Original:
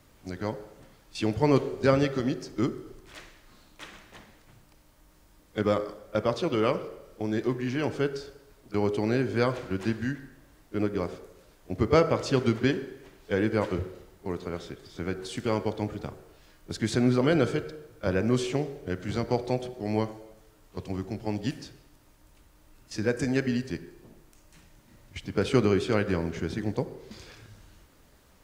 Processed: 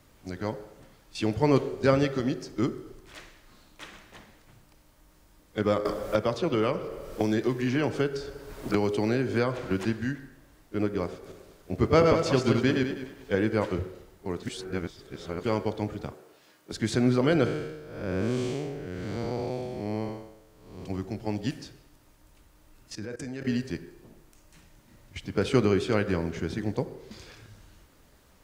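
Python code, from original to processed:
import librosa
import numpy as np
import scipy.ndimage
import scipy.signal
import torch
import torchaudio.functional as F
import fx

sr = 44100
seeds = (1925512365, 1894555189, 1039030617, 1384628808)

y = fx.band_squash(x, sr, depth_pct=100, at=(5.85, 9.85))
y = fx.reverse_delay_fb(y, sr, ms=101, feedback_pct=46, wet_db=-3.5, at=(11.12, 13.35))
y = fx.highpass(y, sr, hz=220.0, slope=12, at=(16.12, 16.73))
y = fx.spec_blur(y, sr, span_ms=257.0, at=(17.45, 20.84), fade=0.02)
y = fx.level_steps(y, sr, step_db=18, at=(22.95, 23.47))
y = fx.edit(y, sr, fx.reverse_span(start_s=14.43, length_s=1.0), tone=tone)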